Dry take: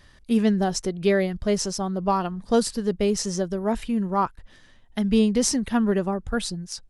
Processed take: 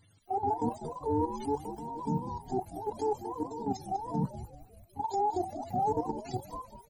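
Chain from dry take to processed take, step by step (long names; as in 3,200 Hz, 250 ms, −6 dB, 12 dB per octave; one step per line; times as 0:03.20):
frequency axis turned over on the octave scale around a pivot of 420 Hz
parametric band 290 Hz +2.5 dB 0.23 octaves
output level in coarse steps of 12 dB
transient designer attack −4 dB, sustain 0 dB
echo with shifted repeats 195 ms, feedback 49%, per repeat −80 Hz, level −12 dB
level −3 dB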